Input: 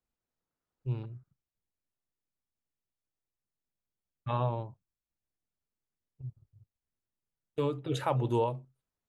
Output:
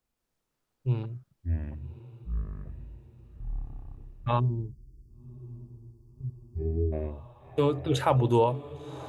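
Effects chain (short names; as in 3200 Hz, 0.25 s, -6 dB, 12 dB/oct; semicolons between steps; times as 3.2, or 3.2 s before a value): echoes that change speed 0.164 s, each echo -7 st, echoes 3; diffused feedback echo 1.092 s, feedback 55%, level -15 dB; spectral gain 4.39–6.92, 440–4300 Hz -30 dB; gain +6 dB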